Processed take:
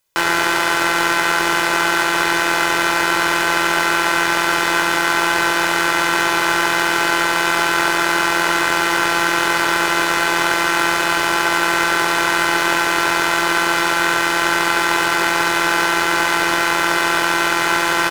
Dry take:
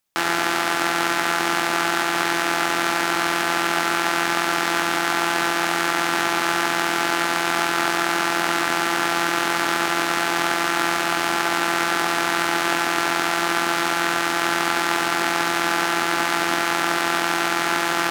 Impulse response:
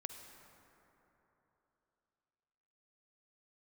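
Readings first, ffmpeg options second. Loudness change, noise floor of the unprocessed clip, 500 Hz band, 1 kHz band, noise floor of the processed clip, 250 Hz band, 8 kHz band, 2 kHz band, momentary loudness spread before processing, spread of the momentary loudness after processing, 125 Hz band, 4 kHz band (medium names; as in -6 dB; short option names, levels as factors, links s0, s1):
+4.5 dB, -23 dBFS, +4.0 dB, +4.0 dB, -18 dBFS, +3.0 dB, +4.0 dB, +6.0 dB, 0 LU, 0 LU, +3.5 dB, +4.5 dB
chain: -af "acontrast=46,aecho=1:1:2:0.64,volume=0.891"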